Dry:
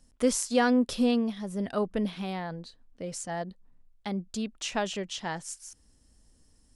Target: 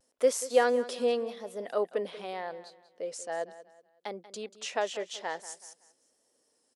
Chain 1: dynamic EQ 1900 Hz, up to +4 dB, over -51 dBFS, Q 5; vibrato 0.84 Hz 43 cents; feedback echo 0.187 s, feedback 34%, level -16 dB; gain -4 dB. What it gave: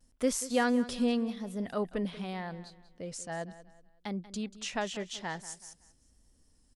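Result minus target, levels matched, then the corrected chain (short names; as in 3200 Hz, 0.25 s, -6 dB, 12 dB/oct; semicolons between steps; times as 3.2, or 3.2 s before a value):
500 Hz band -5.0 dB
dynamic EQ 1900 Hz, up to +4 dB, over -51 dBFS, Q 5; resonant high-pass 480 Hz, resonance Q 2.3; vibrato 0.84 Hz 43 cents; feedback echo 0.187 s, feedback 34%, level -16 dB; gain -4 dB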